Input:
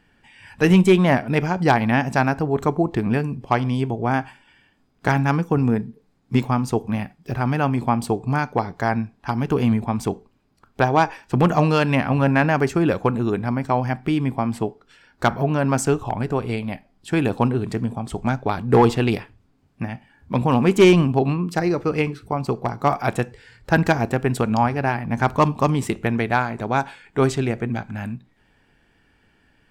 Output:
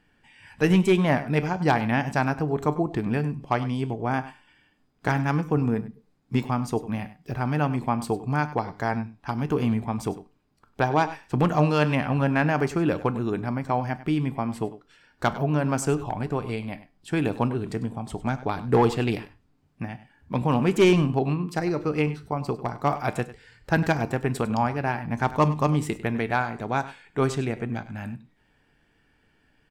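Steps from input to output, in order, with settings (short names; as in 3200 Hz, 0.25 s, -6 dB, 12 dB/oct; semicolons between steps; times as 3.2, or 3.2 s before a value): resonator 150 Hz, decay 0.31 s, harmonics all, mix 50%; on a send: echo 99 ms -16 dB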